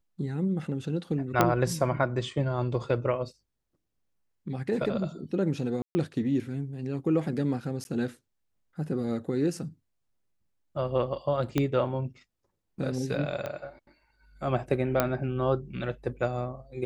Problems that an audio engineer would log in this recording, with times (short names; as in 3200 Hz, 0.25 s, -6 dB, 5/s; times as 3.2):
1.41 pop -7 dBFS
5.82–5.95 gap 0.13 s
7.84–7.85 gap 11 ms
11.58 pop -12 dBFS
13.46 pop -20 dBFS
15 pop -9 dBFS